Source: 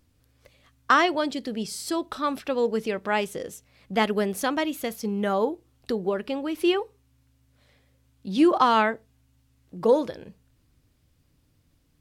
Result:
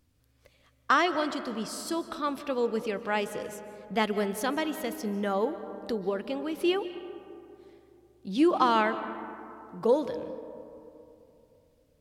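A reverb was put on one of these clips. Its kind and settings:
comb and all-pass reverb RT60 2.9 s, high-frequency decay 0.35×, pre-delay 110 ms, DRR 11.5 dB
level −4 dB

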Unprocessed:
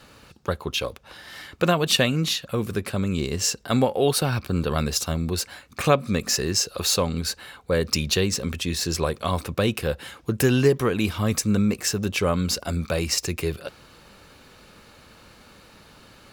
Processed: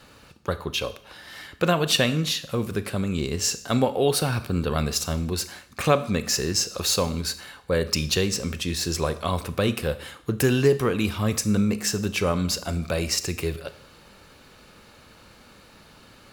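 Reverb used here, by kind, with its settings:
four-comb reverb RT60 0.61 s, combs from 26 ms, DRR 12.5 dB
level −1 dB

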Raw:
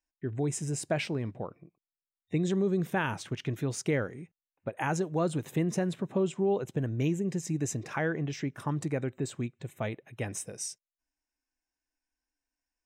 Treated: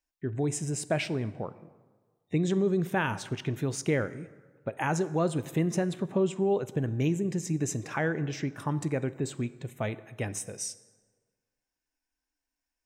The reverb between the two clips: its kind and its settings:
dense smooth reverb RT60 1.5 s, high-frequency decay 0.6×, DRR 15 dB
level +1.5 dB

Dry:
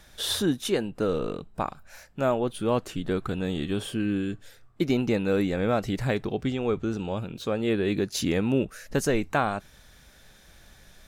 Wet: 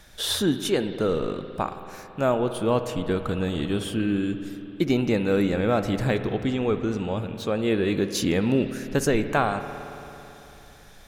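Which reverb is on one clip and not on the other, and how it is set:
spring reverb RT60 3.3 s, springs 55 ms, chirp 35 ms, DRR 9 dB
level +2 dB

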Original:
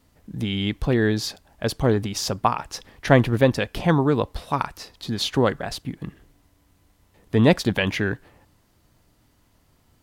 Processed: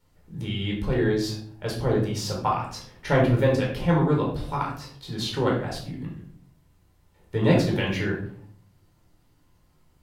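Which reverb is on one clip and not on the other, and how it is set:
rectangular room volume 750 cubic metres, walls furnished, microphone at 4.5 metres
level −10 dB

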